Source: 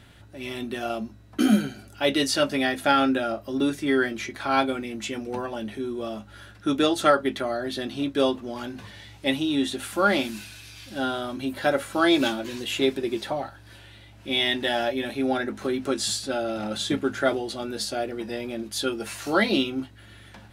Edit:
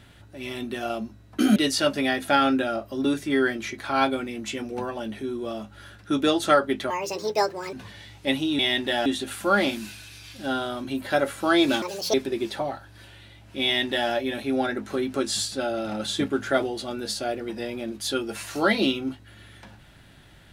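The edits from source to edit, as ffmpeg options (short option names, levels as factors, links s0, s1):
-filter_complex "[0:a]asplit=8[s0][s1][s2][s3][s4][s5][s6][s7];[s0]atrim=end=1.562[s8];[s1]atrim=start=2.118:end=7.464[s9];[s2]atrim=start=7.46:end=8.72,asetpts=PTS-STARTPTS,asetrate=67032,aresample=44100[s10];[s3]atrim=start=8.716:end=9.582[s11];[s4]atrim=start=14.348:end=14.822[s12];[s5]atrim=start=9.578:end=12.344[s13];[s6]atrim=start=12.34:end=12.85,asetpts=PTS-STARTPTS,asetrate=70560,aresample=44100[s14];[s7]atrim=start=12.846[s15];[s8][s9]acrossfade=d=0.004:c1=hsin:c2=hsin[s16];[s16][s10]acrossfade=d=0.004:c1=hsin:c2=hsin[s17];[s17][s11]acrossfade=d=0.004:c1=hsin:c2=hsin[s18];[s18][s12]acrossfade=d=0.004:c1=hsin:c2=hsin[s19];[s19][s13]acrossfade=d=0.004:c1=hsin:c2=hsin[s20];[s20][s14]acrossfade=d=0.004:c1=hsin:c2=hsin[s21];[s21][s15]acrossfade=d=0.004:c1=hsin:c2=hsin"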